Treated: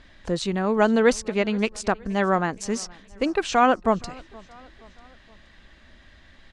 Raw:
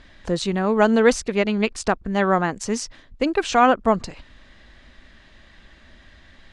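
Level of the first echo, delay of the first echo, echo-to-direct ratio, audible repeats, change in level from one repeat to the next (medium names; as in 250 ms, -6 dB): -24.0 dB, 472 ms, -23.0 dB, 2, -6.0 dB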